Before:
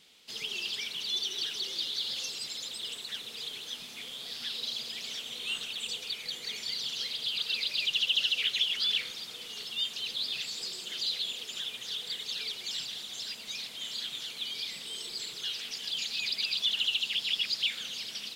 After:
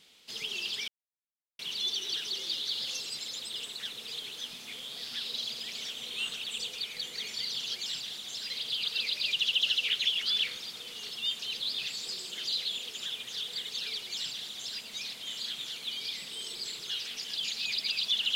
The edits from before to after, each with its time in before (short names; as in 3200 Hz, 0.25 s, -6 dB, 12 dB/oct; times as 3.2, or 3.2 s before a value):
0.88 insert silence 0.71 s
12.6–13.35 copy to 7.04